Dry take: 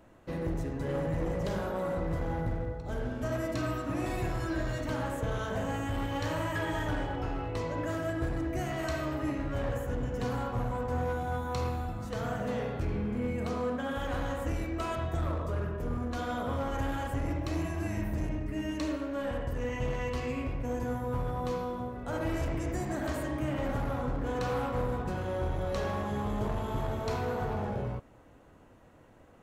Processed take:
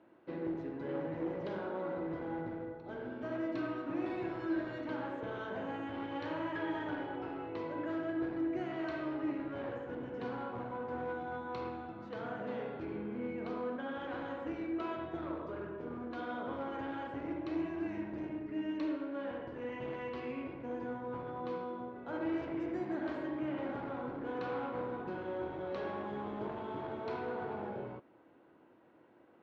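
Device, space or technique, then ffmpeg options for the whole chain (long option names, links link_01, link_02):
kitchen radio: -af "highpass=210,equalizer=frequency=340:width_type=q:width=4:gain=9,equalizer=frequency=930:width_type=q:width=4:gain=4,equalizer=frequency=1500:width_type=q:width=4:gain=7,equalizer=frequency=2200:width_type=q:width=4:gain=4,lowpass=frequency=3800:width=0.5412,lowpass=frequency=3800:width=1.3066,equalizer=frequency=1700:width=0.83:gain=-5.5,volume=-6dB"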